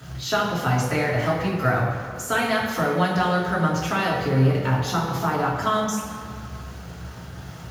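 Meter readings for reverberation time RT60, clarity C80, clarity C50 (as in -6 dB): 2.2 s, 4.5 dB, 2.5 dB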